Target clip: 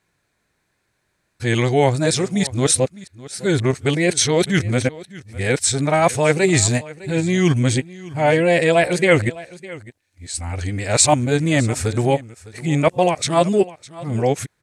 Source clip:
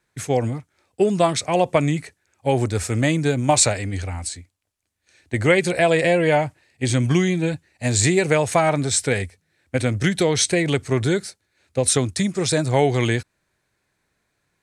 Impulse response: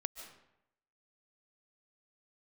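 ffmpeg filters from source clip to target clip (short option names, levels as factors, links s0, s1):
-af "areverse,aecho=1:1:607:0.112,volume=1.26"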